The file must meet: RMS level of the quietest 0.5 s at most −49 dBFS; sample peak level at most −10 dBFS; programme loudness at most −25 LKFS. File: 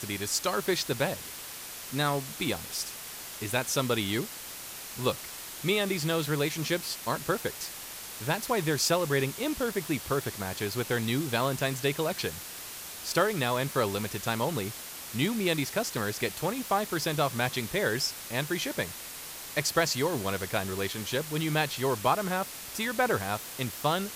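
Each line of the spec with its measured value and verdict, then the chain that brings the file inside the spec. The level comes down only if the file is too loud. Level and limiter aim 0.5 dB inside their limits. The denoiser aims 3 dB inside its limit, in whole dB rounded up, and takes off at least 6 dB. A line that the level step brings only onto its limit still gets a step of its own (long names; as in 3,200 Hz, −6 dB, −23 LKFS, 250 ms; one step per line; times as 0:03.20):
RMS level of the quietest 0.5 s −42 dBFS: out of spec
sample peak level −12.0 dBFS: in spec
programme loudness −30.0 LKFS: in spec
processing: broadband denoise 10 dB, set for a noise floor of −42 dBFS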